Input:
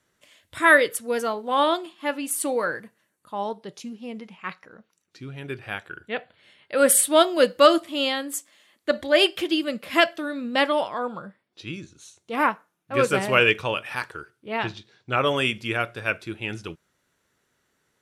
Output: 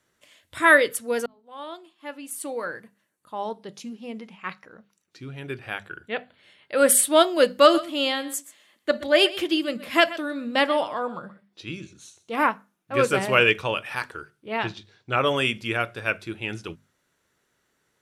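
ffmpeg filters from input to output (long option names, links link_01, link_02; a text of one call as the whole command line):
ffmpeg -i in.wav -filter_complex "[0:a]asettb=1/sr,asplit=3[link_01][link_02][link_03];[link_01]atrim=end=7.584[link_04];[link_02]atrim=start=7.58:end=12.36,asetpts=PTS-STARTPTS,afade=type=in:duration=0.004:curve=qsin,afade=type=out:start_time=4.776:duration=0.004:curve=qsin,aecho=1:1:125:0.141,atrim=end_sample=210798[link_05];[link_03]atrim=start=12.356[link_06];[link_04][link_05]acrossfade=duration=0.004:curve1=hsin:curve2=qsin[link_07];[link_07][link_06]acrossfade=duration=0.004:curve1=qsin:curve2=hsin,asplit=2[link_08][link_09];[link_08]atrim=end=1.26,asetpts=PTS-STARTPTS,afade=type=out:start_time=1.256:duration=0.004:curve=hsin[link_10];[link_09]atrim=start=1.26,asetpts=PTS-STARTPTS,afade=type=in:duration=2.61[link_11];[link_10][link_11]concat=n=2:v=0:a=1,bandreject=frequency=50:width_type=h:width=6,bandreject=frequency=100:width_type=h:width=6,bandreject=frequency=150:width_type=h:width=6,bandreject=frequency=200:width_type=h:width=6,bandreject=frequency=250:width_type=h:width=6" out.wav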